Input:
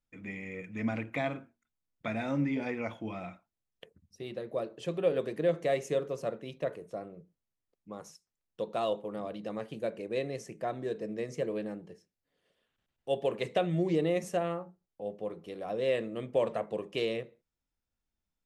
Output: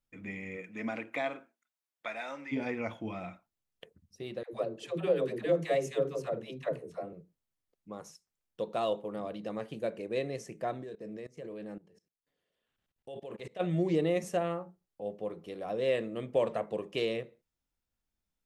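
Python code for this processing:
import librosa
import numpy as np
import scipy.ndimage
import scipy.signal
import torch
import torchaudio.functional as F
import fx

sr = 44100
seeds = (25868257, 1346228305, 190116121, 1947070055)

y = fx.highpass(x, sr, hz=fx.line((0.56, 220.0), (2.51, 870.0)), slope=12, at=(0.56, 2.51), fade=0.02)
y = fx.dispersion(y, sr, late='lows', ms=105.0, hz=450.0, at=(4.43, 7.13))
y = fx.level_steps(y, sr, step_db=21, at=(10.76, 13.59), fade=0.02)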